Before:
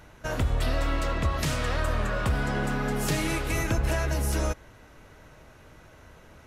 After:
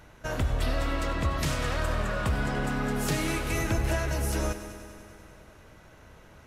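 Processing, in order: multi-head echo 97 ms, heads first and second, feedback 66%, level -15.5 dB; gain -1.5 dB

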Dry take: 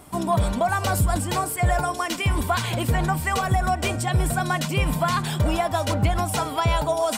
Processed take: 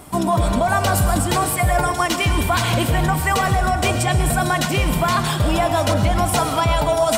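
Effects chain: in parallel at -2 dB: negative-ratio compressor -24 dBFS; on the sum: reverb RT60 1.2 s, pre-delay 67 ms, DRR 7 dB

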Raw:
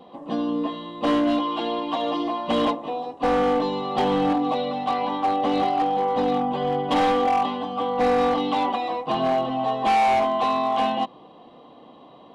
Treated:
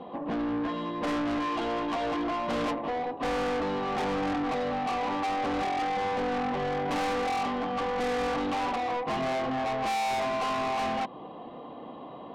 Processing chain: LPF 2500 Hz 12 dB/oct; in parallel at -1.5 dB: compressor, threshold -30 dBFS, peak gain reduction 11.5 dB; on the sum: soft clip -27.5 dBFS, distortion -7 dB

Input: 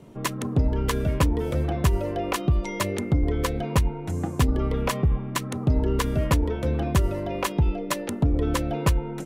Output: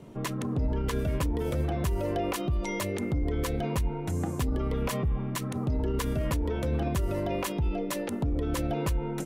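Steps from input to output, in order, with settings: high shelf 7200 Hz -2 dB, from 0.99 s +5.5 dB; limiter -21 dBFS, peak gain reduction 10.5 dB

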